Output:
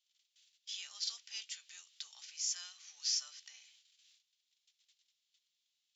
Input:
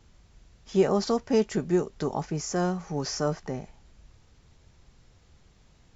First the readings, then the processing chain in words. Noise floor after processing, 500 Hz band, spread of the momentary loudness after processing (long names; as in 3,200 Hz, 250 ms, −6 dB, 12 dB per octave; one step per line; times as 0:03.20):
−84 dBFS, below −40 dB, 19 LU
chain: noise gate −53 dBFS, range −18 dB
harmonic and percussive parts rebalanced percussive −4 dB
in parallel at +1 dB: downward compressor, threshold −35 dBFS, peak gain reduction 17.5 dB
on the sum: four-pole ladder high-pass 2,800 Hz, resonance 45%
level +4.5 dB